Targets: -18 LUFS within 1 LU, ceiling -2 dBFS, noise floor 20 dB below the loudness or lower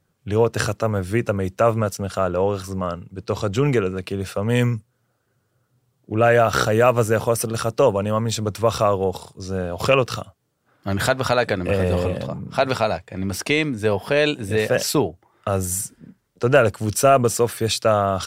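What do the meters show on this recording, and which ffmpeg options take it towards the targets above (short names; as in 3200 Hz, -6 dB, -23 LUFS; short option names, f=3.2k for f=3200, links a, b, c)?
loudness -21.0 LUFS; peak -2.0 dBFS; loudness target -18.0 LUFS
-> -af "volume=3dB,alimiter=limit=-2dB:level=0:latency=1"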